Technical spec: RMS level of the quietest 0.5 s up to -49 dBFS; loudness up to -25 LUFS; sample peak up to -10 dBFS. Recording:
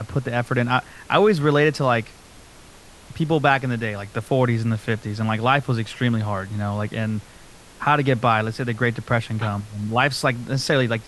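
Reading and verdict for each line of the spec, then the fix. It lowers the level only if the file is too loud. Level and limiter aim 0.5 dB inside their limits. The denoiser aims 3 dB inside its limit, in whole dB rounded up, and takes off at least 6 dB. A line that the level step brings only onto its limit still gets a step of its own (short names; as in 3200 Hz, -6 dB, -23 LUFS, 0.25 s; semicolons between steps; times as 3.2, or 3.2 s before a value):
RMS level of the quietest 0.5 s -46 dBFS: fail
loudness -22.0 LUFS: fail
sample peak -2.0 dBFS: fail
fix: gain -3.5 dB; limiter -10.5 dBFS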